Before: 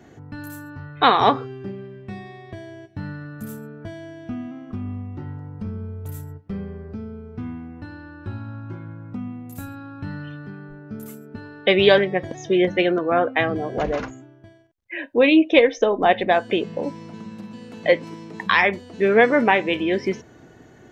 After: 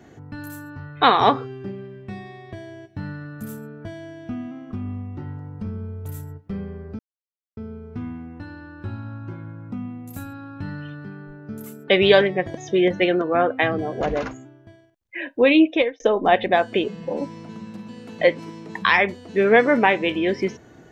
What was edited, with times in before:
0:06.99: splice in silence 0.58 s
0:11.30–0:11.65: remove
0:15.41–0:15.77: fade out linear
0:16.61–0:16.86: time-stretch 1.5×

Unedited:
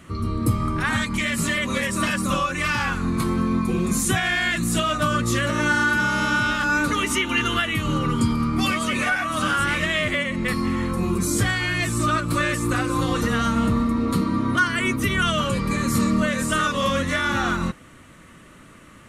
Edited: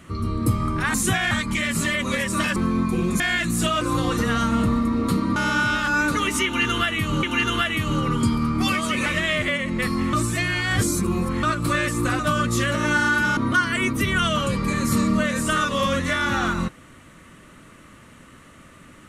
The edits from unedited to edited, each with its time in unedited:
0:02.19–0:03.32: remove
0:03.96–0:04.33: move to 0:00.94
0:04.94–0:06.12: swap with 0:12.85–0:14.40
0:07.21–0:07.99: repeat, 2 plays
0:09.04–0:09.72: remove
0:10.79–0:12.09: reverse

